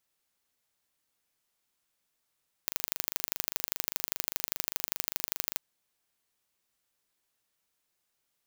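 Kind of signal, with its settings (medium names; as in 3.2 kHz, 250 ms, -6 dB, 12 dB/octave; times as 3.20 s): pulse train 25 per s, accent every 2, -2 dBFS 2.89 s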